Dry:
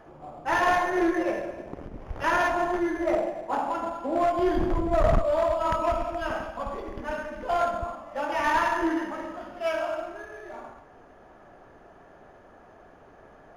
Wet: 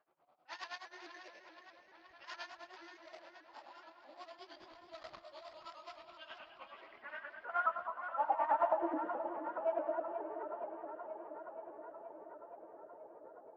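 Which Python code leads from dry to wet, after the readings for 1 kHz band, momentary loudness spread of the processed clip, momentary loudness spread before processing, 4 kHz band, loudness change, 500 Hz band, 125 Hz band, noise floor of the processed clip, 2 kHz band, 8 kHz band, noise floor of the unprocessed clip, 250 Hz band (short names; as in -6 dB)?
-12.0 dB, 20 LU, 16 LU, -13.0 dB, -13.0 dB, -14.5 dB, under -40 dB, -64 dBFS, -16.5 dB, under -20 dB, -52 dBFS, -20.0 dB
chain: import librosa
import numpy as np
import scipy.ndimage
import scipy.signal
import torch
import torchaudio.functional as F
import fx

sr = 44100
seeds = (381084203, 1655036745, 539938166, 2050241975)

y = fx.env_lowpass(x, sr, base_hz=1700.0, full_db=-21.0)
y = fx.high_shelf(y, sr, hz=6100.0, db=-9.0)
y = fx.notch(y, sr, hz=1700.0, q=23.0)
y = fx.filter_sweep_bandpass(y, sr, from_hz=4600.0, to_hz=500.0, start_s=5.89, end_s=9.1, q=4.1)
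y = y * (1.0 - 0.89 / 2.0 + 0.89 / 2.0 * np.cos(2.0 * np.pi * 9.5 * (np.arange(len(y)) / sr)))
y = fx.air_absorb(y, sr, metres=63.0)
y = fx.echo_filtered(y, sr, ms=475, feedback_pct=77, hz=5000.0, wet_db=-9.5)
y = fx.vibrato_shape(y, sr, shape='saw_up', rate_hz=4.7, depth_cents=100.0)
y = y * librosa.db_to_amplitude(3.5)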